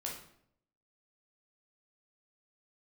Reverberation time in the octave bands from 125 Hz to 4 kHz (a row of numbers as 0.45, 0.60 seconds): 0.80, 0.80, 0.70, 0.60, 0.55, 0.50 seconds